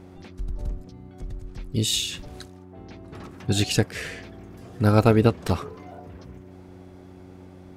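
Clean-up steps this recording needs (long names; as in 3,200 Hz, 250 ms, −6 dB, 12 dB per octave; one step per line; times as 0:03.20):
hum removal 91.9 Hz, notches 4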